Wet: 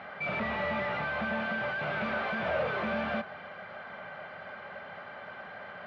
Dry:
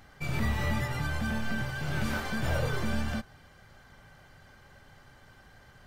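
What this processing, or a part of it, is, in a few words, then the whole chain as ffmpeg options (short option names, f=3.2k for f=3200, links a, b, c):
overdrive pedal into a guitar cabinet: -filter_complex "[0:a]asplit=2[a][b];[b]highpass=f=720:p=1,volume=31dB,asoftclip=type=tanh:threshold=-16.5dB[c];[a][c]amix=inputs=2:normalize=0,lowpass=f=1.3k:p=1,volume=-6dB,highpass=96,equalizer=f=130:t=q:w=4:g=-7,equalizer=f=190:t=q:w=4:g=7,equalizer=f=310:t=q:w=4:g=-7,equalizer=f=620:t=q:w=4:g=9,equalizer=f=1.3k:t=q:w=4:g=4,equalizer=f=2.3k:t=q:w=4:g=5,lowpass=f=3.8k:w=0.5412,lowpass=f=3.8k:w=1.3066,volume=-8.5dB"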